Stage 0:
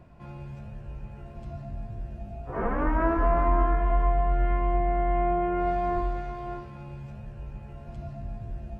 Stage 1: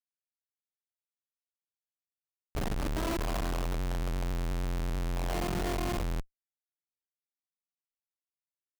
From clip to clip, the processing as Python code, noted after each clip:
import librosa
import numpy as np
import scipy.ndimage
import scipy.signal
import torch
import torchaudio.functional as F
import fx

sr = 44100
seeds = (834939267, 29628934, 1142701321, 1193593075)

y = fx.hum_notches(x, sr, base_hz=50, count=7)
y = fx.schmitt(y, sr, flips_db=-26.0)
y = y * 10.0 ** (-3.0 / 20.0)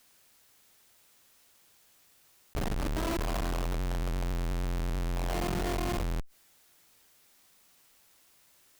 y = fx.env_flatten(x, sr, amount_pct=50)